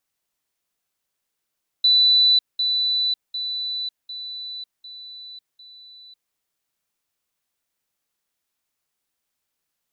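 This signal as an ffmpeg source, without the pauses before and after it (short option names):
-f lavfi -i "aevalsrc='pow(10,(-12.5-6*floor(t/0.75))/20)*sin(2*PI*3980*t)*clip(min(mod(t,0.75),0.55-mod(t,0.75))/0.005,0,1)':d=4.5:s=44100"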